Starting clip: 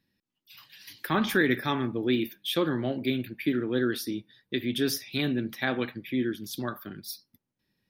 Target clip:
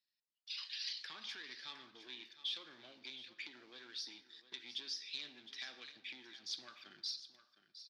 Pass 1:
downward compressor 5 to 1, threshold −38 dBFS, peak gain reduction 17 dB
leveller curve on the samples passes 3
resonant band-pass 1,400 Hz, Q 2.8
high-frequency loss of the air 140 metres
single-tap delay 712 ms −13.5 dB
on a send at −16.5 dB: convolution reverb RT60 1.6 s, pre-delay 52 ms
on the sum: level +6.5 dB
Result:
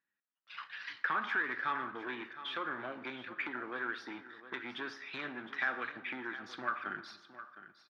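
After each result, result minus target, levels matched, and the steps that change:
1,000 Hz band +15.5 dB; downward compressor: peak gain reduction −5.5 dB
change: resonant band-pass 4,700 Hz, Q 2.8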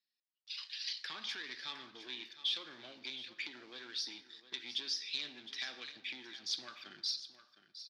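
downward compressor: peak gain reduction −5.5 dB
change: downward compressor 5 to 1, threshold −45 dBFS, peak gain reduction 23 dB

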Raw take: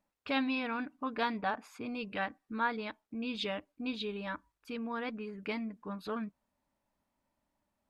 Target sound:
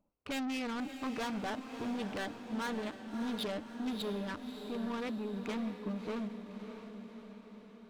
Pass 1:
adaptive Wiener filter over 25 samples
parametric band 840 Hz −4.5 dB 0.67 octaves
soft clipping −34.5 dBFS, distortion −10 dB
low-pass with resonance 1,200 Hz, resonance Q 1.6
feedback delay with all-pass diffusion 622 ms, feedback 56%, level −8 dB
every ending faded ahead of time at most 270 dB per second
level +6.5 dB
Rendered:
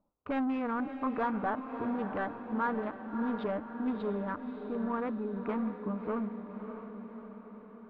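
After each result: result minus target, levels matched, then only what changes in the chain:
1,000 Hz band +3.0 dB; soft clipping: distortion −4 dB
remove: low-pass with resonance 1,200 Hz, resonance Q 1.6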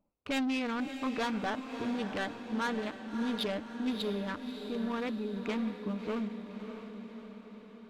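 soft clipping: distortion −4 dB
change: soft clipping −41 dBFS, distortion −6 dB

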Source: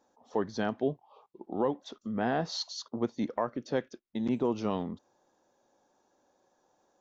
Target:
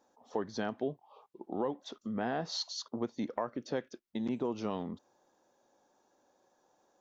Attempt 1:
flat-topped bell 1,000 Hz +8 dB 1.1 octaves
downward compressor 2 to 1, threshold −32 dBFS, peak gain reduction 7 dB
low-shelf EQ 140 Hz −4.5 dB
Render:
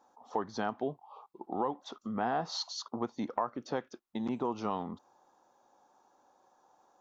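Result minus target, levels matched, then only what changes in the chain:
1,000 Hz band +5.0 dB
remove: flat-topped bell 1,000 Hz +8 dB 1.1 octaves

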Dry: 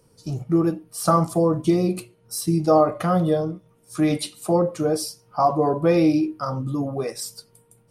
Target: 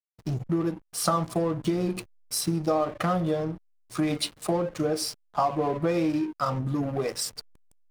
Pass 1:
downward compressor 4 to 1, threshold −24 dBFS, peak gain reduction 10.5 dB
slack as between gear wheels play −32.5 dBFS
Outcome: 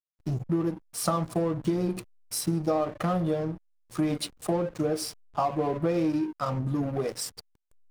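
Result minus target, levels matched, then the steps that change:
2,000 Hz band −2.5 dB
add after downward compressor: parametric band 2,700 Hz +5.5 dB 2.8 octaves

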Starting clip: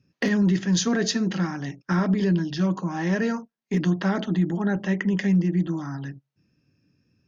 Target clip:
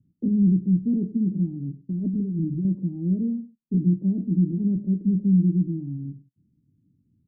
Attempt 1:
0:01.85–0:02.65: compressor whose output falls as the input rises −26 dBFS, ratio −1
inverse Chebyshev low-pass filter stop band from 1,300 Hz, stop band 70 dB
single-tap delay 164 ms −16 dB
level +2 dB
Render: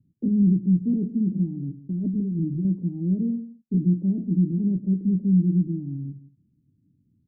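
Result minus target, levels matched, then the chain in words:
echo 66 ms late
0:01.85–0:02.65: compressor whose output falls as the input rises −26 dBFS, ratio −1
inverse Chebyshev low-pass filter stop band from 1,300 Hz, stop band 70 dB
single-tap delay 98 ms −16 dB
level +2 dB

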